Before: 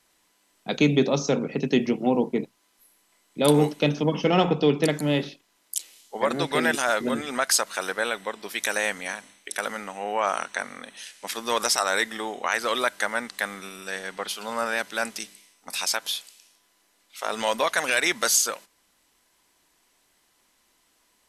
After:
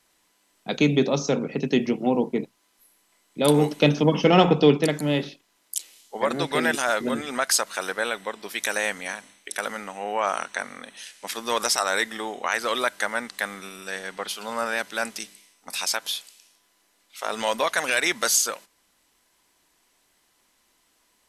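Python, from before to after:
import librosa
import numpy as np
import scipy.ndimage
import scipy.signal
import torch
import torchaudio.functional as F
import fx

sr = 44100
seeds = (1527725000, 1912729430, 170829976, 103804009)

y = fx.edit(x, sr, fx.clip_gain(start_s=3.71, length_s=1.06, db=4.0), tone=tone)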